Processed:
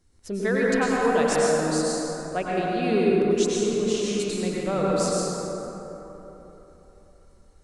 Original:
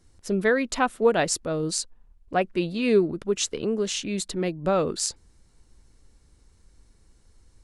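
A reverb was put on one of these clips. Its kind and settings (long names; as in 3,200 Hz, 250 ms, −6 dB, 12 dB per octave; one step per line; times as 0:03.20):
dense smooth reverb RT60 3.7 s, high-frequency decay 0.4×, pre-delay 85 ms, DRR −5.5 dB
level −5.5 dB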